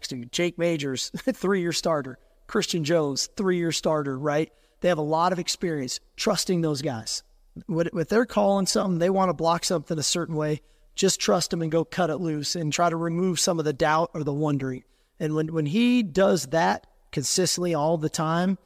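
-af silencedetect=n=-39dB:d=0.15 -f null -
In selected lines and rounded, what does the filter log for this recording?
silence_start: 2.14
silence_end: 2.49 | silence_duration: 0.35
silence_start: 4.47
silence_end: 4.82 | silence_duration: 0.35
silence_start: 5.97
silence_end: 6.18 | silence_duration: 0.20
silence_start: 7.20
silence_end: 7.56 | silence_duration: 0.37
silence_start: 10.58
silence_end: 10.97 | silence_duration: 0.39
silence_start: 14.80
silence_end: 15.20 | silence_duration: 0.41
silence_start: 16.84
silence_end: 17.13 | silence_duration: 0.29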